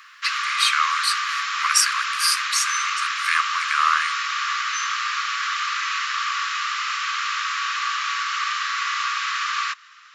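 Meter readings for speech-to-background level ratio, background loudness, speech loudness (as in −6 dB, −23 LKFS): 1.0 dB, −23.5 LKFS, −22.5 LKFS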